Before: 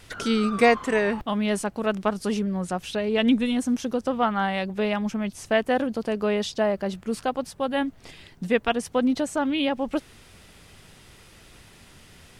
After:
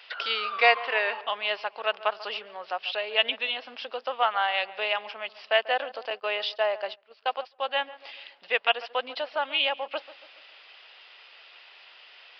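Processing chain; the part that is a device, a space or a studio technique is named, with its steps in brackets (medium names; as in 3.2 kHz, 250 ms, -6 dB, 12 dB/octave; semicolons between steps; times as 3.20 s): filtered feedback delay 141 ms, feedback 50%, low-pass 1.6 kHz, level -16 dB; musical greeting card (resampled via 11.025 kHz; high-pass 600 Hz 24 dB/octave; peaking EQ 2.8 kHz +8 dB 0.49 oct); 6.10–7.59 s: gate -35 dBFS, range -19 dB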